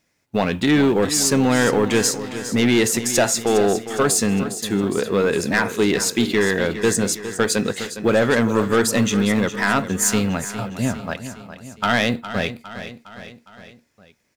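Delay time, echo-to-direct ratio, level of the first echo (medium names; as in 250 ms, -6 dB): 409 ms, -10.5 dB, -12.0 dB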